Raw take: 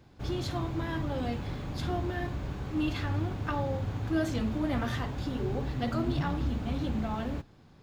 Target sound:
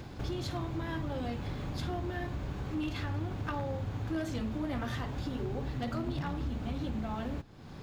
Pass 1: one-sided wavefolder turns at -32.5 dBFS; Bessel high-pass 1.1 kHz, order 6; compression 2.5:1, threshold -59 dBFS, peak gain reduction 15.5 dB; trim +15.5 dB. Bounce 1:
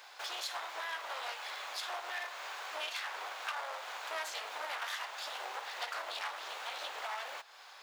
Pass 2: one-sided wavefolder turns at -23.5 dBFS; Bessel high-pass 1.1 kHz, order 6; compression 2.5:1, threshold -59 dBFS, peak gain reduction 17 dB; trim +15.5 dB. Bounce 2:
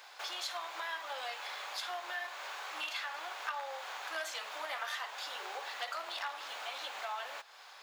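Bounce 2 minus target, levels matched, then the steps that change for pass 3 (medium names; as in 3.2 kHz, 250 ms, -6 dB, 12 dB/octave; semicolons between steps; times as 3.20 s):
1 kHz band +5.5 dB
remove: Bessel high-pass 1.1 kHz, order 6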